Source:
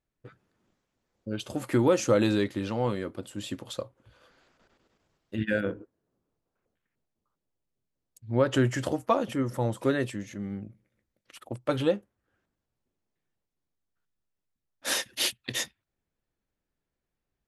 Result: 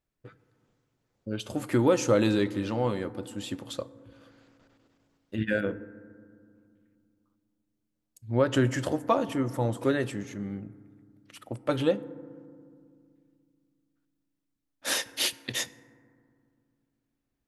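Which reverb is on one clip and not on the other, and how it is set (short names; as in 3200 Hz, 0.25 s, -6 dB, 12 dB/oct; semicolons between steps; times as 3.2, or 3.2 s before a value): FDN reverb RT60 2.2 s, low-frequency decay 1.5×, high-frequency decay 0.3×, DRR 16 dB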